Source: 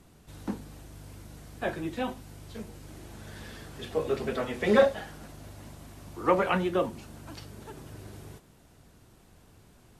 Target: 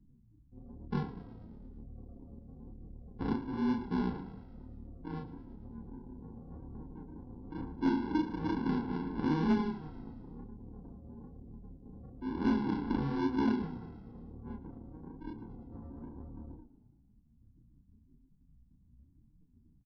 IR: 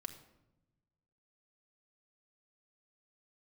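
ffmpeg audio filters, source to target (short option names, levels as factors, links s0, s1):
-filter_complex "[0:a]acompressor=threshold=0.0355:ratio=5,highshelf=f=2300:g=-7.5,atempo=0.68,aresample=16000,acrusher=samples=19:mix=1:aa=0.000001,aresample=44100,afftdn=nr=31:nf=-50,asplit=8[s0][s1][s2][s3][s4][s5][s6][s7];[s1]adelay=83,afreqshift=-49,volume=0.158[s8];[s2]adelay=166,afreqshift=-98,volume=0.101[s9];[s3]adelay=249,afreqshift=-147,volume=0.0646[s10];[s4]adelay=332,afreqshift=-196,volume=0.0417[s11];[s5]adelay=415,afreqshift=-245,volume=0.0266[s12];[s6]adelay=498,afreqshift=-294,volume=0.017[s13];[s7]adelay=581,afreqshift=-343,volume=0.0108[s14];[s0][s8][s9][s10][s11][s12][s13][s14]amix=inputs=8:normalize=0,flanger=delay=19.5:depth=7.7:speed=1.4,asetrate=32667,aresample=44100,equalizer=f=100:t=o:w=0.67:g=-3,equalizer=f=250:t=o:w=0.67:g=9,equalizer=f=1000:t=o:w=0.67:g=5,equalizer=f=2500:t=o:w=0.67:g=-7,asoftclip=type=hard:threshold=0.075,lowpass=4000"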